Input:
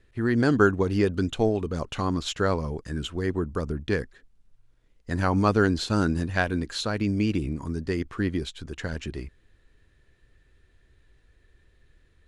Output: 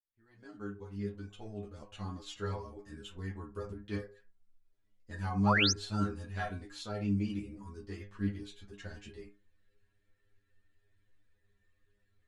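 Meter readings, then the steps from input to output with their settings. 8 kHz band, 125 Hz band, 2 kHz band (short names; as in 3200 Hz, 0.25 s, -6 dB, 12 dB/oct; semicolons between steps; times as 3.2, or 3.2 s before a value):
-3.0 dB, -10.0 dB, -8.5 dB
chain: opening faded in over 2.67 s; spectral repair 1.05–1.31, 510–1100 Hz; metallic resonator 100 Hz, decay 0.36 s, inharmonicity 0.002; painted sound rise, 5.46–5.72, 740–6600 Hz -25 dBFS; ensemble effect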